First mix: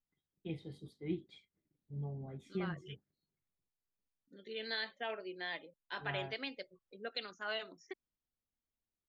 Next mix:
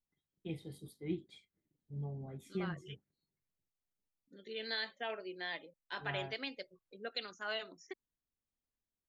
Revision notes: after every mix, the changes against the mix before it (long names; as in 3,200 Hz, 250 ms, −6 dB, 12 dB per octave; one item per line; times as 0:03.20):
master: remove low-pass filter 5,300 Hz 12 dB per octave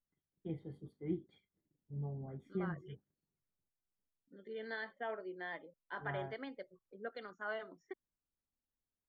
master: add Savitzky-Golay smoothing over 41 samples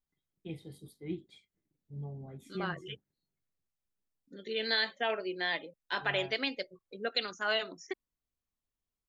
second voice +8.5 dB
master: remove Savitzky-Golay smoothing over 41 samples